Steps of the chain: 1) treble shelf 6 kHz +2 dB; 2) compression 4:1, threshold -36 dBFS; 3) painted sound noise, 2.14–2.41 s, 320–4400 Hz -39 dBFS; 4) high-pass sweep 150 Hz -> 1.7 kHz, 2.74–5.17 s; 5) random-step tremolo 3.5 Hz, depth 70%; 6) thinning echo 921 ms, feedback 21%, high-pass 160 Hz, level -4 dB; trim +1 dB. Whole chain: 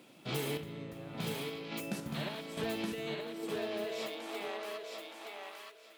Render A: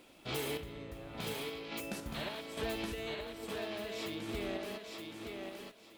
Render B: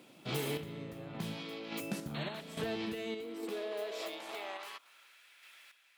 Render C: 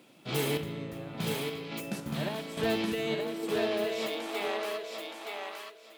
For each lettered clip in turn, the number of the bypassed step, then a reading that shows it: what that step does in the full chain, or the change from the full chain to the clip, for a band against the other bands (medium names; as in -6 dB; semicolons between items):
4, momentary loudness spread change -1 LU; 6, momentary loudness spread change +10 LU; 2, loudness change +6.0 LU